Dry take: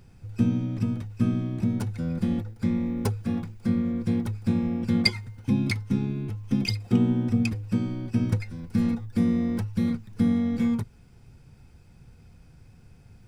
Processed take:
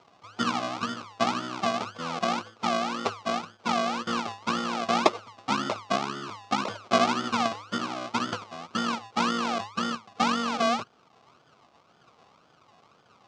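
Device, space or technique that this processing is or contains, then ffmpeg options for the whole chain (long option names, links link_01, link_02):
circuit-bent sampling toy: -af "acrusher=samples=38:mix=1:aa=0.000001:lfo=1:lforange=22.8:lforate=1.9,highpass=450,equalizer=frequency=680:width_type=q:width=4:gain=3,equalizer=frequency=1200:width_type=q:width=4:gain=6,equalizer=frequency=1800:width_type=q:width=4:gain=-8,lowpass=frequency=6000:width=0.5412,lowpass=frequency=6000:width=1.3066,volume=4dB"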